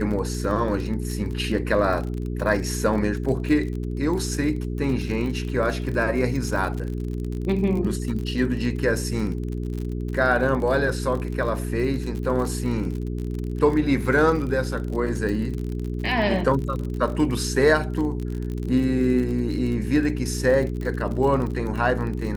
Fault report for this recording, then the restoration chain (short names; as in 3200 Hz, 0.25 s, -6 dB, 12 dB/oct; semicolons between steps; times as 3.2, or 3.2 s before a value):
crackle 42/s -29 dBFS
hum 60 Hz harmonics 7 -28 dBFS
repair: de-click; de-hum 60 Hz, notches 7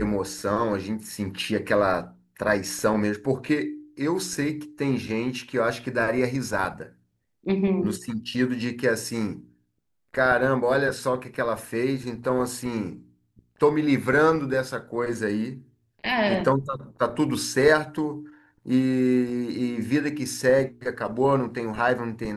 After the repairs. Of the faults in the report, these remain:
none